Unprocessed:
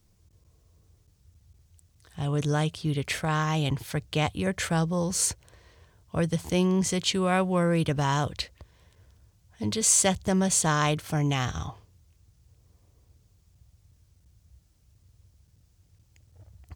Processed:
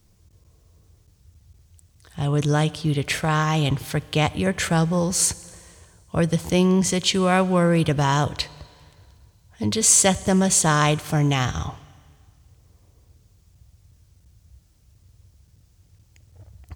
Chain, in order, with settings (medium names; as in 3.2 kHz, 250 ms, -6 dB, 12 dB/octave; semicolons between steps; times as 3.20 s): Schroeder reverb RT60 1.9 s, combs from 27 ms, DRR 19 dB; trim +5.5 dB